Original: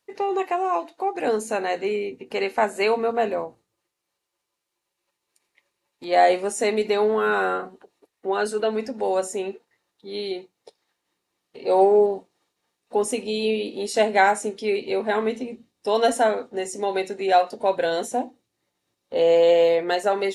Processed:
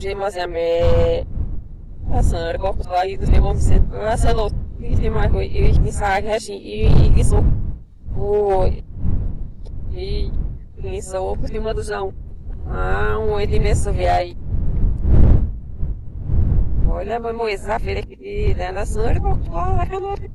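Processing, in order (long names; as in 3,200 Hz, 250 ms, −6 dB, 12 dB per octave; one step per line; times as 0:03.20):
played backwards from end to start
wind on the microphone 100 Hz −20 dBFS
gain into a clipping stage and back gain 10.5 dB
low-shelf EQ 76 Hz +9 dB
hum removal 53.31 Hz, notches 5
level −1 dB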